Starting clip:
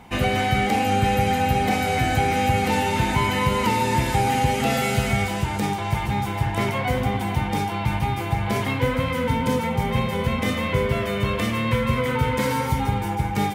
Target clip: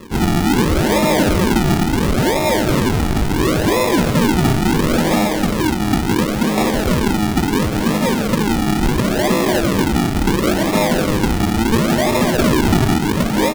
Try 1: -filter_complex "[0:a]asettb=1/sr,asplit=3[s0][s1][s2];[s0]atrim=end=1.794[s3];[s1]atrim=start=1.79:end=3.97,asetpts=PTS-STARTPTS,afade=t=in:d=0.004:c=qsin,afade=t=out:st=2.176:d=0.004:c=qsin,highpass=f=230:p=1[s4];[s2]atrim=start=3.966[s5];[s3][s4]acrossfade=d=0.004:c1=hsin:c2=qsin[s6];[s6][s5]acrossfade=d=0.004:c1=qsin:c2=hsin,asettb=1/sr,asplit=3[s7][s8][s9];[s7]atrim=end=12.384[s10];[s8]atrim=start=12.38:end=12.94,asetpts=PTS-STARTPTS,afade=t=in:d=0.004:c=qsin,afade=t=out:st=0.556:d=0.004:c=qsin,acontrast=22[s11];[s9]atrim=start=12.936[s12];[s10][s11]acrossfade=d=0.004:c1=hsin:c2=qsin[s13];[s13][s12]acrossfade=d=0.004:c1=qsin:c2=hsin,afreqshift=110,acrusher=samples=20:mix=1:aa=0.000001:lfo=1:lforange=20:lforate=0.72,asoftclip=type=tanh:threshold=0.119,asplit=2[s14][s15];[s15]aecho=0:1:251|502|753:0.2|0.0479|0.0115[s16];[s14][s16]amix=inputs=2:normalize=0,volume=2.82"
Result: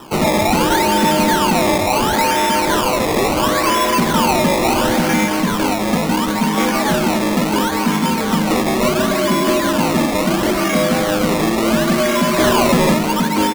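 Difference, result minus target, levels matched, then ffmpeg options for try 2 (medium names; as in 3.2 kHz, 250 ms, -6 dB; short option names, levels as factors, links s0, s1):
decimation with a swept rate: distortion -11 dB
-filter_complex "[0:a]asettb=1/sr,asplit=3[s0][s1][s2];[s0]atrim=end=1.794[s3];[s1]atrim=start=1.79:end=3.97,asetpts=PTS-STARTPTS,afade=t=in:d=0.004:c=qsin,afade=t=out:st=2.176:d=0.004:c=qsin,highpass=f=230:p=1[s4];[s2]atrim=start=3.966[s5];[s3][s4]acrossfade=d=0.004:c1=hsin:c2=qsin[s6];[s6][s5]acrossfade=d=0.004:c1=qsin:c2=hsin,asettb=1/sr,asplit=3[s7][s8][s9];[s7]atrim=end=12.384[s10];[s8]atrim=start=12.38:end=12.94,asetpts=PTS-STARTPTS,afade=t=in:d=0.004:c=qsin,afade=t=out:st=0.556:d=0.004:c=qsin,acontrast=22[s11];[s9]atrim=start=12.936[s12];[s10][s11]acrossfade=d=0.004:c1=hsin:c2=qsin[s13];[s13][s12]acrossfade=d=0.004:c1=qsin:c2=hsin,afreqshift=110,acrusher=samples=57:mix=1:aa=0.000001:lfo=1:lforange=57:lforate=0.72,asoftclip=type=tanh:threshold=0.119,asplit=2[s14][s15];[s15]aecho=0:1:251|502|753:0.2|0.0479|0.0115[s16];[s14][s16]amix=inputs=2:normalize=0,volume=2.82"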